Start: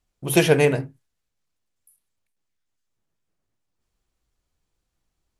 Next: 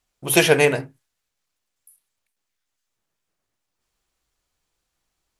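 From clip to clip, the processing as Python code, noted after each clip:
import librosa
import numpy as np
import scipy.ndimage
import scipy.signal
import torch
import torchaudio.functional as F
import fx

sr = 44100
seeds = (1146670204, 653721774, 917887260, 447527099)

y = fx.low_shelf(x, sr, hz=400.0, db=-10.5)
y = y * 10.0 ** (5.5 / 20.0)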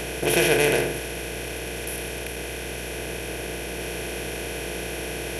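y = fx.bin_compress(x, sr, power=0.2)
y = fx.add_hum(y, sr, base_hz=60, snr_db=11)
y = y * 10.0 ** (-9.0 / 20.0)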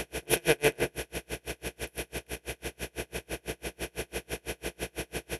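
y = x * 10.0 ** (-38 * (0.5 - 0.5 * np.cos(2.0 * np.pi * 6.0 * np.arange(len(x)) / sr)) / 20.0)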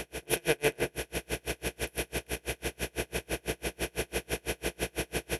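y = fx.rider(x, sr, range_db=3, speed_s=0.5)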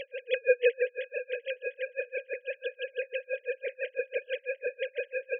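y = fx.sine_speech(x, sr)
y = fx.echo_feedback(y, sr, ms=699, feedback_pct=15, wet_db=-18.0)
y = y * 10.0 ** (1.5 / 20.0)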